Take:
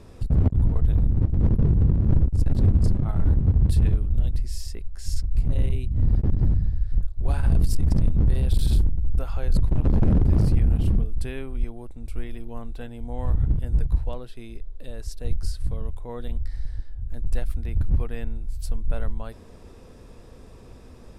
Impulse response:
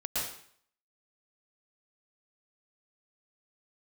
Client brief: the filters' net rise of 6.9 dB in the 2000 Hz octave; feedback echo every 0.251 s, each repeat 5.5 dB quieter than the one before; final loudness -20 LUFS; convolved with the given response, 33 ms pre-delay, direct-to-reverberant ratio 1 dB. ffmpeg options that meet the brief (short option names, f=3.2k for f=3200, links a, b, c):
-filter_complex "[0:a]equalizer=f=2k:t=o:g=9,aecho=1:1:251|502|753|1004|1255|1506|1757:0.531|0.281|0.149|0.079|0.0419|0.0222|0.0118,asplit=2[a][b];[1:a]atrim=start_sample=2205,adelay=33[c];[b][c]afir=irnorm=-1:irlink=0,volume=-7dB[d];[a][d]amix=inputs=2:normalize=0,volume=1dB"